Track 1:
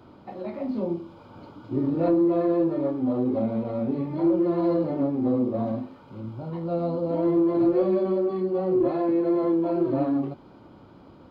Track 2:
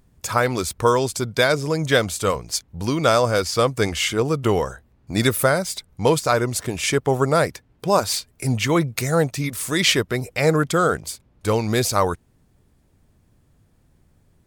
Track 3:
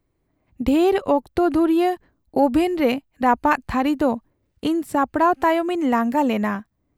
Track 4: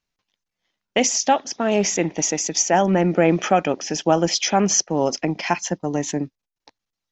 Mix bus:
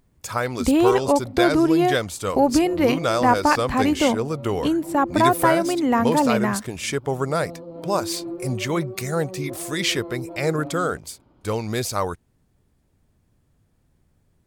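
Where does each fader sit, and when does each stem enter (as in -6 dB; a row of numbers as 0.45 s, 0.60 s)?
-11.0 dB, -5.0 dB, 0.0 dB, mute; 0.65 s, 0.00 s, 0.00 s, mute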